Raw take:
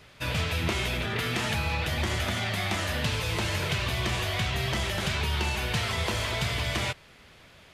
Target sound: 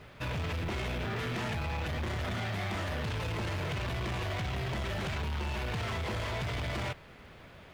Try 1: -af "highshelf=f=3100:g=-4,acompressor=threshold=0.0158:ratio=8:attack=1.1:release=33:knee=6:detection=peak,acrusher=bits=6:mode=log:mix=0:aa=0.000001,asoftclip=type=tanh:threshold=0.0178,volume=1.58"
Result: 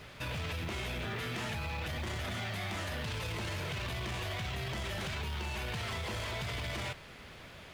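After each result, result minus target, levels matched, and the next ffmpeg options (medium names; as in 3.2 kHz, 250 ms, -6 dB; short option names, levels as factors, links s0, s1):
compression: peak gain reduction +8.5 dB; 8 kHz band +5.0 dB
-af "highshelf=f=3100:g=-4,acompressor=threshold=0.0447:ratio=8:attack=1.1:release=33:knee=6:detection=peak,acrusher=bits=6:mode=log:mix=0:aa=0.000001,asoftclip=type=tanh:threshold=0.0178,volume=1.58"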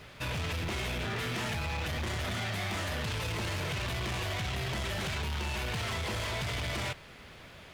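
8 kHz band +6.5 dB
-af "highshelf=f=3100:g=-15,acompressor=threshold=0.0447:ratio=8:attack=1.1:release=33:knee=6:detection=peak,acrusher=bits=6:mode=log:mix=0:aa=0.000001,asoftclip=type=tanh:threshold=0.0178,volume=1.58"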